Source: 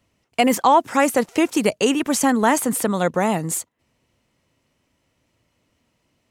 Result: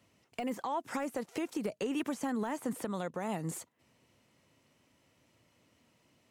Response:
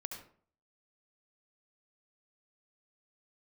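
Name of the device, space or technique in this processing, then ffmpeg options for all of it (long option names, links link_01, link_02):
podcast mastering chain: -af "highpass=96,deesser=0.65,acompressor=threshold=-26dB:ratio=4,alimiter=level_in=0.5dB:limit=-24dB:level=0:latency=1:release=434,volume=-0.5dB" -ar 48000 -c:a libmp3lame -b:a 96k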